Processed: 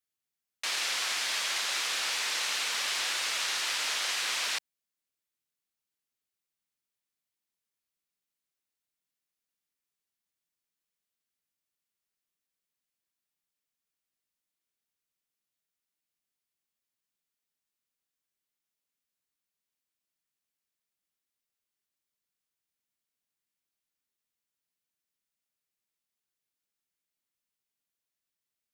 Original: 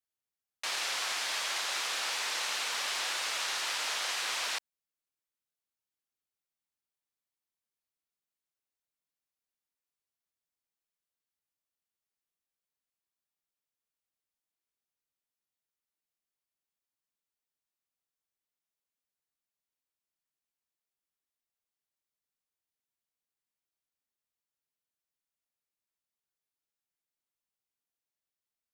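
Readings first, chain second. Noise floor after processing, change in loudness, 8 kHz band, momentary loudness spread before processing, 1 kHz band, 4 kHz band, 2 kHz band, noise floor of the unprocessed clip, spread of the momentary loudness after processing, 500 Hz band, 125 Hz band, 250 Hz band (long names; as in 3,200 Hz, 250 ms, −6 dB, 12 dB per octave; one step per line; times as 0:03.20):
below −85 dBFS, +2.5 dB, +3.0 dB, 2 LU, −0.5 dB, +3.0 dB, +2.5 dB, below −85 dBFS, 2 LU, −0.5 dB, can't be measured, +2.0 dB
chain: drawn EQ curve 110 Hz 0 dB, 180 Hz +4 dB, 800 Hz −2 dB, 2,100 Hz +3 dB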